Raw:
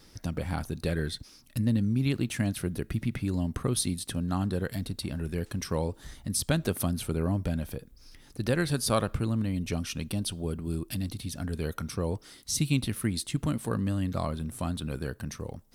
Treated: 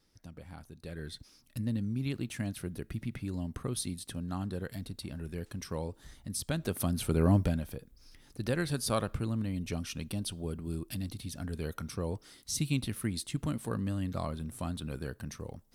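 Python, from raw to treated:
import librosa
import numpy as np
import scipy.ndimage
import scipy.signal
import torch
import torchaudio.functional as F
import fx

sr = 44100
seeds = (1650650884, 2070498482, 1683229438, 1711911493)

y = fx.gain(x, sr, db=fx.line((0.79, -16.0), (1.19, -7.0), (6.52, -7.0), (7.36, 4.5), (7.65, -4.5)))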